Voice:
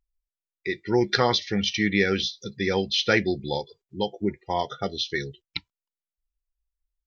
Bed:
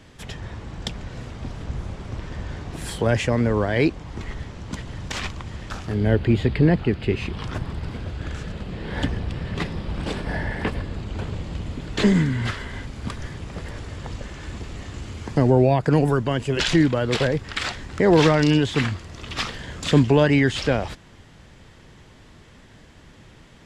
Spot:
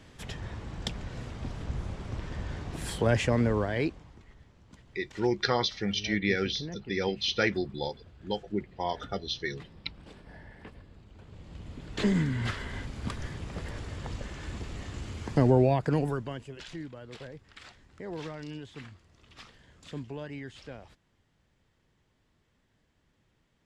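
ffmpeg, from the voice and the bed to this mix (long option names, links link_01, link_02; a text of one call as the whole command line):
ffmpeg -i stem1.wav -i stem2.wav -filter_complex "[0:a]adelay=4300,volume=-5.5dB[link_01];[1:a]volume=13.5dB,afade=type=out:start_time=3.39:duration=0.82:silence=0.125893,afade=type=in:start_time=11.24:duration=1.47:silence=0.125893,afade=type=out:start_time=15.45:duration=1.12:silence=0.11885[link_02];[link_01][link_02]amix=inputs=2:normalize=0" out.wav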